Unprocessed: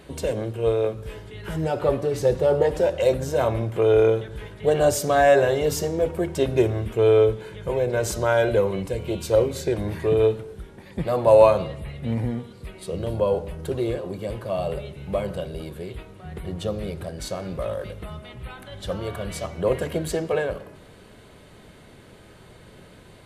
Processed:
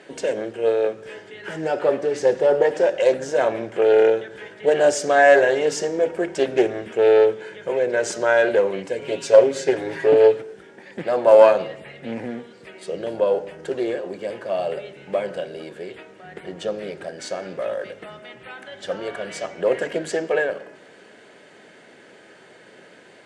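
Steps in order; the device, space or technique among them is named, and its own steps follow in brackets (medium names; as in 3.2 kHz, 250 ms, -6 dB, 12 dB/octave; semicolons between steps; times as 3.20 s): 9.01–10.42 s: comb 7.3 ms, depth 89%; bass shelf 97 Hz -10.5 dB; full-range speaker at full volume (loudspeaker Doppler distortion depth 0.28 ms; cabinet simulation 280–7900 Hz, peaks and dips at 1.1 kHz -7 dB, 1.7 kHz +6 dB, 3.9 kHz -6 dB); trim +3.5 dB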